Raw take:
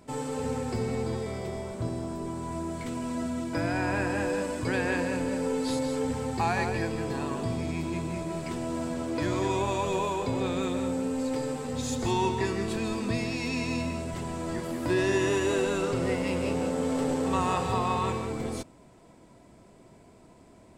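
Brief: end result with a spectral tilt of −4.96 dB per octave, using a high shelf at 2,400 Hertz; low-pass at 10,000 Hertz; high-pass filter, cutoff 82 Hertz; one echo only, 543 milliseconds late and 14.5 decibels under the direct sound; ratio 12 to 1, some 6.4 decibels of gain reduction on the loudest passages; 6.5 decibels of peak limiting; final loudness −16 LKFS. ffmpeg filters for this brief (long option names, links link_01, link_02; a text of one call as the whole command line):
ffmpeg -i in.wav -af "highpass=82,lowpass=10000,highshelf=frequency=2400:gain=4,acompressor=threshold=-28dB:ratio=12,alimiter=level_in=1dB:limit=-24dB:level=0:latency=1,volume=-1dB,aecho=1:1:543:0.188,volume=18dB" out.wav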